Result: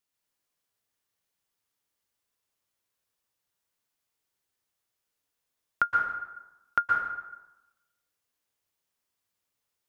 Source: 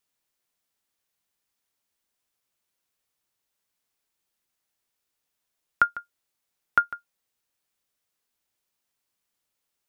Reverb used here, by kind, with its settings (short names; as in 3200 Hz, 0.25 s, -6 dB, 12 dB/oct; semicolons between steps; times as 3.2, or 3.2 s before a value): plate-style reverb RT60 1 s, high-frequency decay 0.6×, pre-delay 0.11 s, DRR -1 dB; gain -5 dB